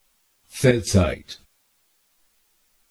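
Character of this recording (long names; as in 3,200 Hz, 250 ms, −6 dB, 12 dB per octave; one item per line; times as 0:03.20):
chopped level 2.3 Hz, depth 65%, duty 60%
a quantiser's noise floor 12 bits, dither triangular
a shimmering, thickened sound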